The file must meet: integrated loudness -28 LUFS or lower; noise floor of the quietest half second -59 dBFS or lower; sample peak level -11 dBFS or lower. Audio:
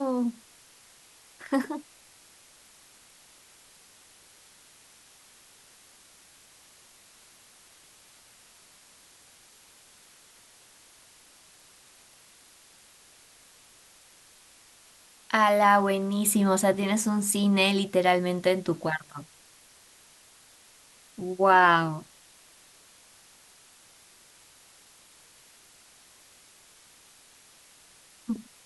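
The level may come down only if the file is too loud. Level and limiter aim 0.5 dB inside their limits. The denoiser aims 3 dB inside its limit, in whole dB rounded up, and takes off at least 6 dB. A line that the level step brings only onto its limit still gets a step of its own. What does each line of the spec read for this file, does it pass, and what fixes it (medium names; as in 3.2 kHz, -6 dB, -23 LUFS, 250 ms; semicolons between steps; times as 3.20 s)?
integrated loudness -24.5 LUFS: fail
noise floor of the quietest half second -56 dBFS: fail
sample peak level -7.5 dBFS: fail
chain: trim -4 dB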